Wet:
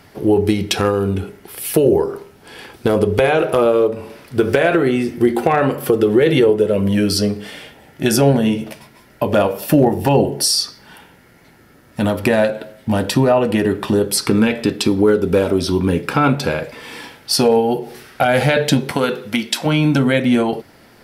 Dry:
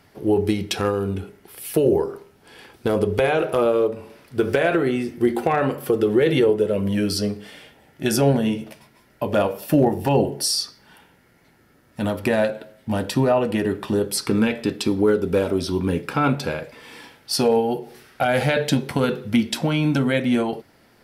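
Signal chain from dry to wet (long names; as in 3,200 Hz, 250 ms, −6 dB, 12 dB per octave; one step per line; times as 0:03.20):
0:18.90–0:19.65: high-pass filter 310 Hz → 980 Hz 6 dB per octave
in parallel at +1 dB: downward compressor, threshold −25 dBFS, peak gain reduction 12 dB
on the sum: level +2 dB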